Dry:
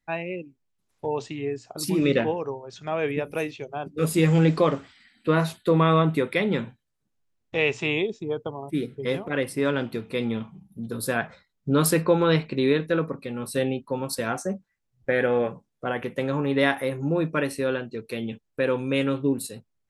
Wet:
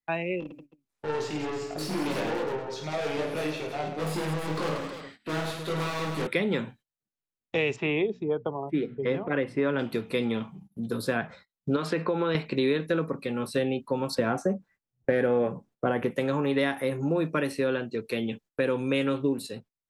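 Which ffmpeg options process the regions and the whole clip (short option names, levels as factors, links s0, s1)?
-filter_complex "[0:a]asettb=1/sr,asplit=3[s0][s1][s2];[s0]atrim=end=0.404[s3];[s1]atrim=start=0.4:end=6.27,asetpts=PTS-STARTPTS,afade=t=in:d=0.004:c=qsin,afade=t=out:st=5.866:d=0.004:c=qsin,aeval=exprs='(tanh(44.7*val(0)+0.35)-tanh(0.35))/44.7':c=same,aecho=1:1:20|52|103.2|185.1|316.2:0.794|0.631|0.501|0.398|0.316,atrim=end_sample=258867[s4];[s2]atrim=start=6.266[s5];[s3][s4]acrossfade=d=0.004:c1=hsin:c2=qsin[s6];[s6][s5]acrossfade=d=0.004:c1=qsin:c2=hsin,asettb=1/sr,asplit=3[s7][s8][s9];[s7]atrim=end=7.764[s10];[s8]atrim=start=7.76:end=9.79,asetpts=PTS-STARTPTS,afade=t=in:d=0.004:c=qsin,afade=t=out:st=2.026:d=0.004:c=qsin,lowpass=2300,bandreject=f=60:t=h:w=6,bandreject=f=120:t=h:w=6,bandreject=f=180:t=h:w=6,bandreject=f=240:t=h:w=6[s11];[s9]atrim=start=9.786[s12];[s10][s11]acrossfade=d=0.004:c1=hsin:c2=qsin[s13];[s13][s12]acrossfade=d=0.004:c1=qsin:c2=hsin,asettb=1/sr,asplit=3[s14][s15][s16];[s14]atrim=end=11.764[s17];[s15]atrim=start=11.76:end=12.35,asetpts=PTS-STARTPTS,afade=t=in:d=0.004:c=qsin,afade=t=out:st=0.586:d=0.004:c=qsin,lowpass=3600,lowshelf=f=140:g=-11.5,acompressor=threshold=0.0708:ratio=3:attack=3.2:release=140:knee=1:detection=peak[s18];[s16]atrim=start=12.346[s19];[s17][s18]acrossfade=d=0.004:c1=hsin:c2=qsin[s20];[s20][s19]acrossfade=d=0.004:c1=qsin:c2=hsin,asettb=1/sr,asplit=3[s21][s22][s23];[s21]atrim=end=14.154[s24];[s22]atrim=start=14.15:end=16.11,asetpts=PTS-STARTPTS,afade=t=in:d=0.004:c=qsin,afade=t=out:st=1.956:d=0.004:c=qsin,highshelf=f=2100:g=-11,acontrast=79[s25];[s23]atrim=start=16.106[s26];[s24][s25]acrossfade=d=0.004:c1=hsin:c2=qsin[s27];[s27][s26]acrossfade=d=0.004:c1=qsin:c2=hsin,agate=range=0.158:threshold=0.00316:ratio=16:detection=peak,lowshelf=f=92:g=-10,acrossover=split=350|5200[s28][s29][s30];[s28]acompressor=threshold=0.0282:ratio=4[s31];[s29]acompressor=threshold=0.0316:ratio=4[s32];[s30]acompressor=threshold=0.00251:ratio=4[s33];[s31][s32][s33]amix=inputs=3:normalize=0,volume=1.41"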